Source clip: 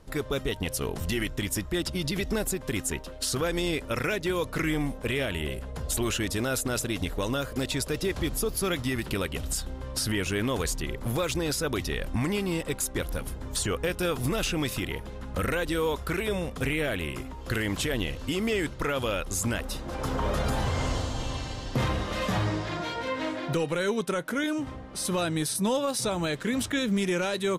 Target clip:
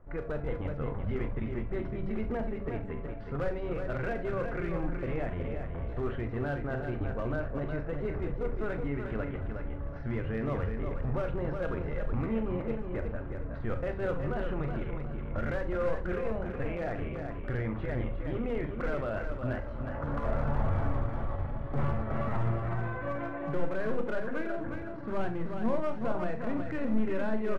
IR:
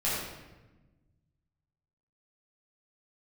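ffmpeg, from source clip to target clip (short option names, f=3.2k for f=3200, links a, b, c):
-filter_complex "[0:a]lowpass=f=1.6k:w=0.5412,lowpass=f=1.6k:w=1.3066,bandreject=f=76.57:t=h:w=4,bandreject=f=153.14:t=h:w=4,bandreject=f=229.71:t=h:w=4,bandreject=f=306.28:t=h:w=4,bandreject=f=382.85:t=h:w=4,aeval=exprs='clip(val(0),-1,0.0596)':c=same,asplit=2[a][b];[b]adelay=39,volume=-10dB[c];[a][c]amix=inputs=2:normalize=0,aecho=1:1:367|734|1101|1468:0.501|0.17|0.0579|0.0197,asplit=2[d][e];[1:a]atrim=start_sample=2205,atrim=end_sample=3969,lowshelf=f=100:g=12[f];[e][f]afir=irnorm=-1:irlink=0,volume=-13.5dB[g];[d][g]amix=inputs=2:normalize=0,asetrate=48091,aresample=44100,atempo=0.917004,volume=-7dB" -ar 44100 -c:a libvorbis -b:a 128k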